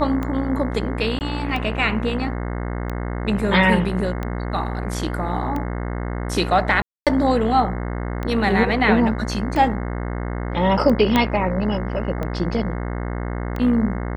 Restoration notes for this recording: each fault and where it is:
buzz 60 Hz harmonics 36 -26 dBFS
tick 45 rpm -15 dBFS
1.19–1.21 gap 19 ms
6.82–7.07 gap 0.247 s
11.16 pop -4 dBFS

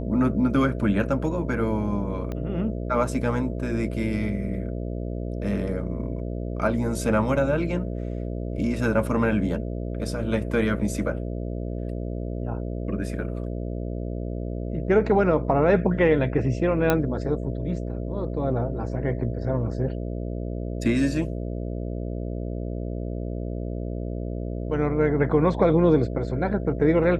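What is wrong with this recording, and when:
buzz 60 Hz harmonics 11 -30 dBFS
2.32 pop -20 dBFS
16.9 pop -7 dBFS

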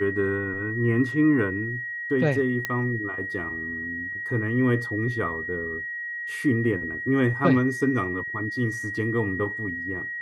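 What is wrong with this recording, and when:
tone 1900 Hz -30 dBFS
2.65 pop -12 dBFS

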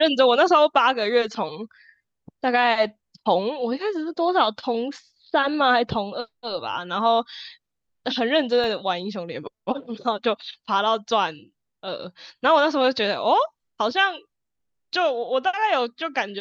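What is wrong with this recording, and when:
8.64 gap 2 ms

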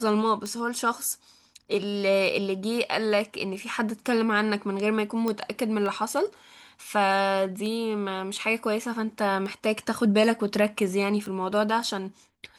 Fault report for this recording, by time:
tick 33 1/3 rpm -22 dBFS
5.28 pop -15 dBFS

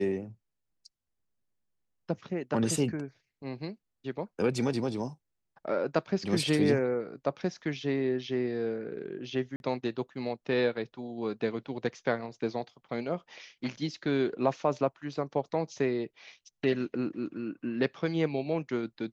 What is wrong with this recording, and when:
9.56–9.6 gap 41 ms

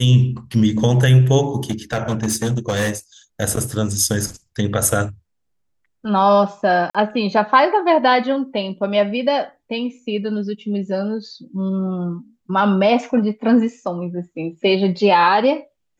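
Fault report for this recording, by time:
1.7–2.9 clipped -15 dBFS
6.9–6.95 gap 46 ms

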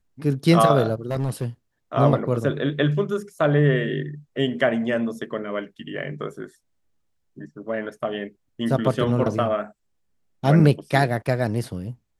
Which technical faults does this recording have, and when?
1.1–1.45 clipped -20 dBFS

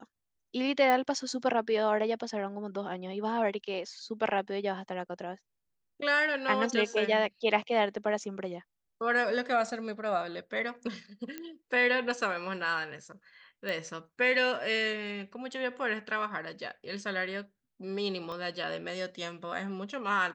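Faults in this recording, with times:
0.9 pop -15 dBFS
11.38 pop -23 dBFS
13.69 pop -22 dBFS
18.32 pop -28 dBFS

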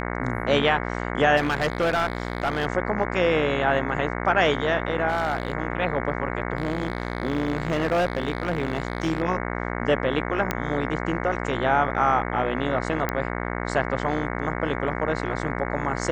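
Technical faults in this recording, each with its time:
buzz 60 Hz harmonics 37 -29 dBFS
1.36–2.67 clipped -18.5 dBFS
5.08–5.53 clipped -18.5 dBFS
6.57–9.22 clipped -18 dBFS
10.51 pop -9 dBFS
13.09 pop -11 dBFS

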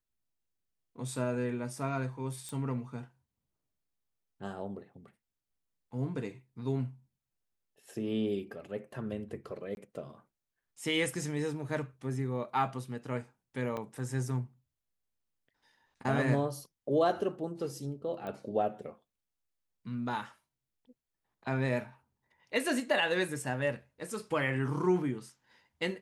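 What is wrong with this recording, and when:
2.49 pop -27 dBFS
9.75–9.77 gap 21 ms
13.77 gap 2.1 ms
18.27 pop -28 dBFS

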